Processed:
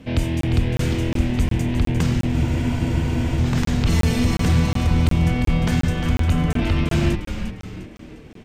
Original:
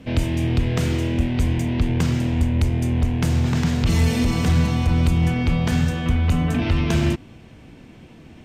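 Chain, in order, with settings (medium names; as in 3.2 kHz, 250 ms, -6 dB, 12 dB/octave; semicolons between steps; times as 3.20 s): frequency-shifting echo 352 ms, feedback 41%, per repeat -130 Hz, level -8 dB; crackling interface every 0.36 s, samples 1024, zero, from 0.41 s; spectral freeze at 2.35 s, 1.02 s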